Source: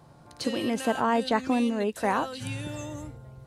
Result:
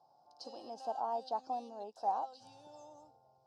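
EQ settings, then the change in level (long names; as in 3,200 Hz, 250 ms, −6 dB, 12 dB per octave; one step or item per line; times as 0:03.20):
pair of resonant band-passes 2,000 Hz, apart 2.7 octaves
high-shelf EQ 4,000 Hz −10 dB
−1.0 dB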